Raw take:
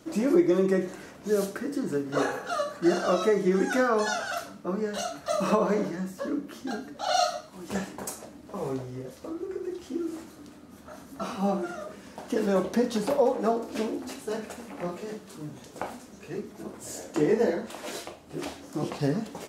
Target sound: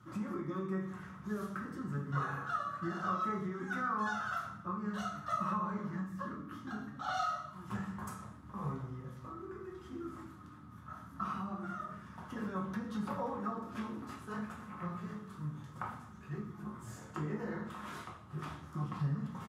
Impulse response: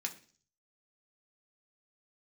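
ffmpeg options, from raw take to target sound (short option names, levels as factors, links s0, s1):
-filter_complex "[0:a]firequalizer=gain_entry='entry(130,0);entry(420,-20);entry(670,-20);entry(1200,-3);entry(2500,-18);entry(8900,-21);entry(14000,-11)':delay=0.05:min_phase=1,acompressor=threshold=0.0141:ratio=6[s0];[1:a]atrim=start_sample=2205,asetrate=22491,aresample=44100[s1];[s0][s1]afir=irnorm=-1:irlink=0"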